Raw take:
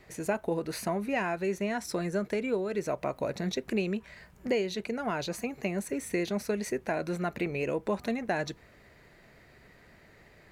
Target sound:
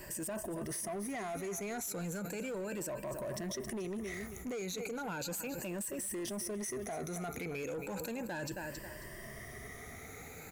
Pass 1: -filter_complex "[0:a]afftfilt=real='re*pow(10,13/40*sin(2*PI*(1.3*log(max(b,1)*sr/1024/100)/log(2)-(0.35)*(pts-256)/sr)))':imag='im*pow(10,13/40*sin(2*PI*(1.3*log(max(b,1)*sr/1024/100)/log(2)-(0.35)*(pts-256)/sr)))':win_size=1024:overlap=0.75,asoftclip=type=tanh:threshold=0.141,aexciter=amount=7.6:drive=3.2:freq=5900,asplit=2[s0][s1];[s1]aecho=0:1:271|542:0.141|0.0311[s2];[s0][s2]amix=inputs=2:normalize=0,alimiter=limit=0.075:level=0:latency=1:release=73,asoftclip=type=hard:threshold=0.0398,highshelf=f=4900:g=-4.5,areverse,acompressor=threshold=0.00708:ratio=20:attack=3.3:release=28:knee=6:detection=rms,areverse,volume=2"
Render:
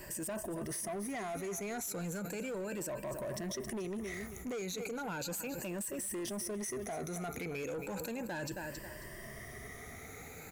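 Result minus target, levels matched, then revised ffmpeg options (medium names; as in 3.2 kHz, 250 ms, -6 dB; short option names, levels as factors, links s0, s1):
saturation: distortion +12 dB
-filter_complex "[0:a]afftfilt=real='re*pow(10,13/40*sin(2*PI*(1.3*log(max(b,1)*sr/1024/100)/log(2)-(0.35)*(pts-256)/sr)))':imag='im*pow(10,13/40*sin(2*PI*(1.3*log(max(b,1)*sr/1024/100)/log(2)-(0.35)*(pts-256)/sr)))':win_size=1024:overlap=0.75,asoftclip=type=tanh:threshold=0.316,aexciter=amount=7.6:drive=3.2:freq=5900,asplit=2[s0][s1];[s1]aecho=0:1:271|542:0.141|0.0311[s2];[s0][s2]amix=inputs=2:normalize=0,alimiter=limit=0.075:level=0:latency=1:release=73,asoftclip=type=hard:threshold=0.0398,highshelf=f=4900:g=-4.5,areverse,acompressor=threshold=0.00708:ratio=20:attack=3.3:release=28:knee=6:detection=rms,areverse,volume=2"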